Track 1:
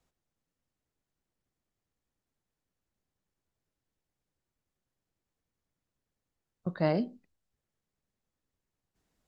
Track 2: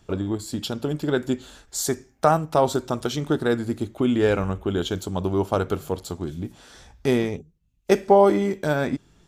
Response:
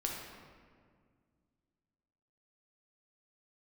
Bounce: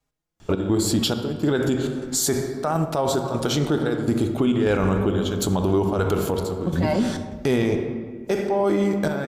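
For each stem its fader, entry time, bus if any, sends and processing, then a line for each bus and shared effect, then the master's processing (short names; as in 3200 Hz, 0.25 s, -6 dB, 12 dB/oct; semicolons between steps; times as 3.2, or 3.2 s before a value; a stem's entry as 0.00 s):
0.0 dB, 0.00 s, send -6.5 dB, vibrato 3.1 Hz 9.4 cents; endless flanger 4.5 ms +0.97 Hz
0.0 dB, 0.40 s, send -6.5 dB, step gate "x.xxx..xx" 102 bpm -12 dB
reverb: on, RT60 1.9 s, pre-delay 6 ms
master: AGC gain up to 12 dB; limiter -12.5 dBFS, peak gain reduction 11.5 dB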